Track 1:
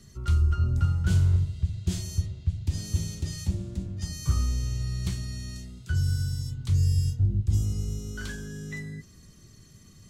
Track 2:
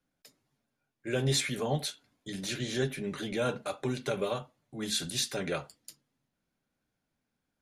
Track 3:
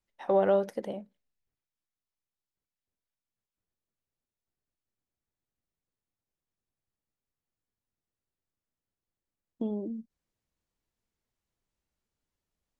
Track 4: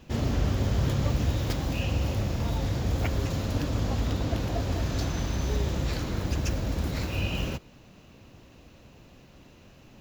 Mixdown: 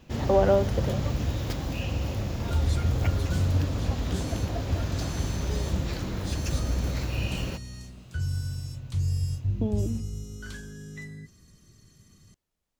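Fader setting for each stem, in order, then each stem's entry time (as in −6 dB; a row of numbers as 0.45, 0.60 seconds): −4.0, −13.5, +3.0, −2.0 decibels; 2.25, 1.35, 0.00, 0.00 seconds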